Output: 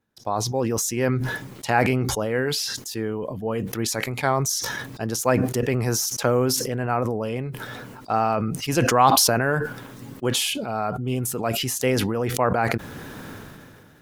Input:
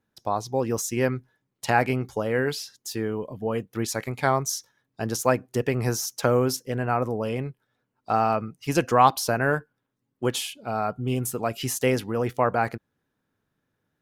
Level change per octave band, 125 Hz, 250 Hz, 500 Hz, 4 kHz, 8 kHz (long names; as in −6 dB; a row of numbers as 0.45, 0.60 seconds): +3.0, +3.0, +1.5, +7.5, +6.5 decibels